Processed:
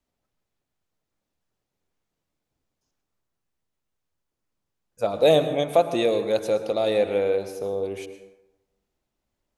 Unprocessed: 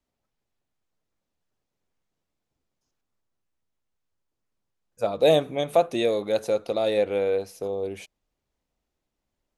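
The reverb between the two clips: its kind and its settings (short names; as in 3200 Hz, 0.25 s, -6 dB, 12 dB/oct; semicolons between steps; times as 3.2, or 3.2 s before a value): plate-style reverb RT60 1 s, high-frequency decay 0.5×, pre-delay 95 ms, DRR 9.5 dB; gain +1 dB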